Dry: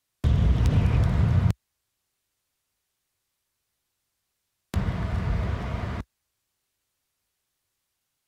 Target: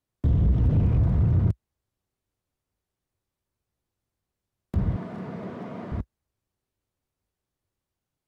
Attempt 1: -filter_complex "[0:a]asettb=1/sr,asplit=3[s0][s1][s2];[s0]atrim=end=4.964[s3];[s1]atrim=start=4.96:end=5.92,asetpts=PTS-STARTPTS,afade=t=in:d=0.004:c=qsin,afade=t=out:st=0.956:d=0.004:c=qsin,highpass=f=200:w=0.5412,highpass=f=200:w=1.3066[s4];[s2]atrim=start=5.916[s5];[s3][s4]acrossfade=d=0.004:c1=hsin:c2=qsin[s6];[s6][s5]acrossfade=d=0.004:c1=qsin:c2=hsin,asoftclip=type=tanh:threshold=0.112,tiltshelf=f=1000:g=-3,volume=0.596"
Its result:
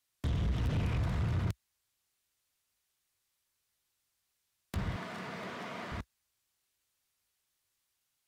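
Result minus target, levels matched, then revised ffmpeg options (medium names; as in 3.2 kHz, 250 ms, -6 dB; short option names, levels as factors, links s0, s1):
1 kHz band +10.5 dB
-filter_complex "[0:a]asettb=1/sr,asplit=3[s0][s1][s2];[s0]atrim=end=4.964[s3];[s1]atrim=start=4.96:end=5.92,asetpts=PTS-STARTPTS,afade=t=in:d=0.004:c=qsin,afade=t=out:st=0.956:d=0.004:c=qsin,highpass=f=200:w=0.5412,highpass=f=200:w=1.3066[s4];[s2]atrim=start=5.916[s5];[s3][s4]acrossfade=d=0.004:c1=hsin:c2=qsin[s6];[s6][s5]acrossfade=d=0.004:c1=qsin:c2=hsin,asoftclip=type=tanh:threshold=0.112,tiltshelf=f=1000:g=8.5,volume=0.596"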